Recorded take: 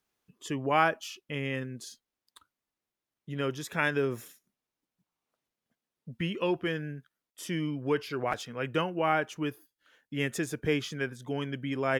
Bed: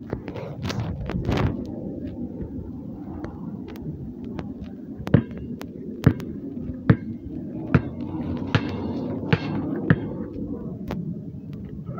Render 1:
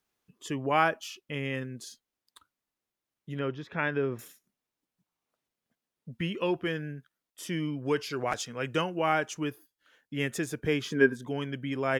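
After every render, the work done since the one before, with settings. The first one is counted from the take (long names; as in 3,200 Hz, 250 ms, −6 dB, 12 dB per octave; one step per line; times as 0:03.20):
0:03.39–0:04.19: high-frequency loss of the air 290 metres
0:07.85–0:09.44: parametric band 6,800 Hz +9 dB 1.2 octaves
0:10.85–0:11.27: hollow resonant body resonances 270/400/990/1,600 Hz, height 13 dB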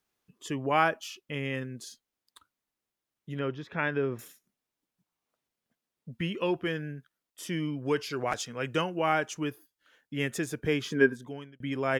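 0:11.02–0:11.60: fade out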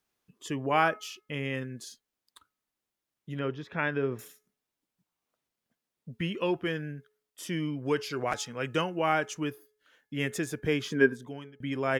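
hum removal 425.7 Hz, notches 5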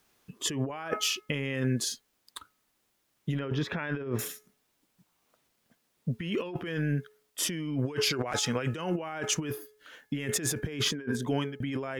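in parallel at +1.5 dB: brickwall limiter −20 dBFS, peak gain reduction 10 dB
on the sum: compressor whose output falls as the input rises −32 dBFS, ratio −1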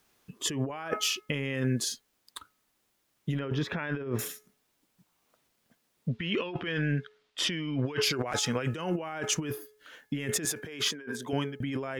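0:06.08–0:08.02: drawn EQ curve 410 Hz 0 dB, 3,700 Hz +7 dB, 12,000 Hz −18 dB
0:10.45–0:11.33: high-pass filter 530 Hz 6 dB per octave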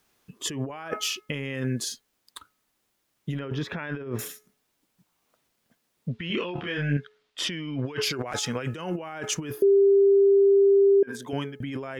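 0:06.27–0:06.97: double-tracking delay 28 ms −2 dB
0:09.62–0:11.03: beep over 396 Hz −14.5 dBFS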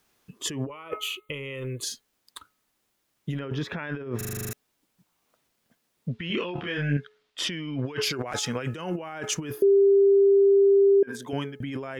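0:00.67–0:01.83: phaser with its sweep stopped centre 1,100 Hz, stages 8
0:04.17: stutter in place 0.04 s, 9 plays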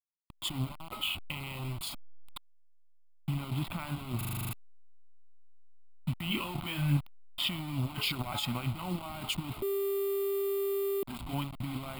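hold until the input has moved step −33 dBFS
phaser with its sweep stopped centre 1,700 Hz, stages 6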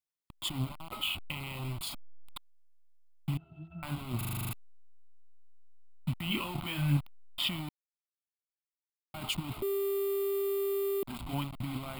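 0:03.37–0:03.83: resonances in every octave E, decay 0.24 s
0:07.69–0:09.14: silence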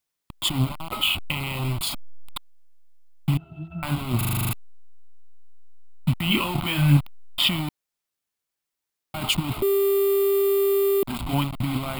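level +11 dB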